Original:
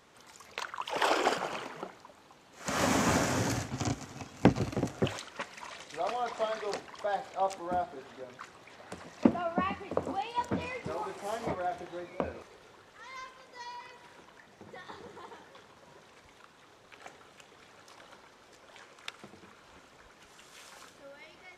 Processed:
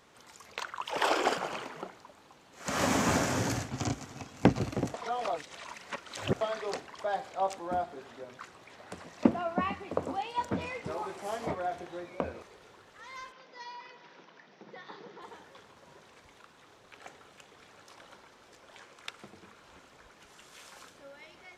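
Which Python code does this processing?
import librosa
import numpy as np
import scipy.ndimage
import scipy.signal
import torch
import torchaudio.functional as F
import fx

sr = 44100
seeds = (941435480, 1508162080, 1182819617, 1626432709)

y = fx.cheby1_bandpass(x, sr, low_hz=150.0, high_hz=5700.0, order=4, at=(13.32, 15.22))
y = fx.edit(y, sr, fx.reverse_span(start_s=4.94, length_s=1.47), tone=tone)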